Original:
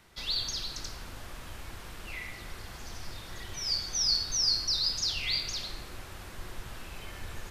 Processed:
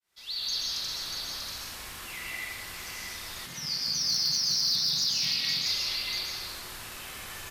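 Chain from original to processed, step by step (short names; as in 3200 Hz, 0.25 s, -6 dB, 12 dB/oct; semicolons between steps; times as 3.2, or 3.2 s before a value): opening faded in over 0.62 s; echo 0.64 s -6 dB; reverb RT60 1.7 s, pre-delay 0.119 s, DRR -4 dB; 3.46–5.66 ring modulator 150 Hz; hard clip -17 dBFS, distortion -30 dB; tilt +3 dB/oct; soft clip -12 dBFS, distortion -20 dB; dynamic EQ 7600 Hz, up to -5 dB, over -38 dBFS, Q 1.6; gain -4 dB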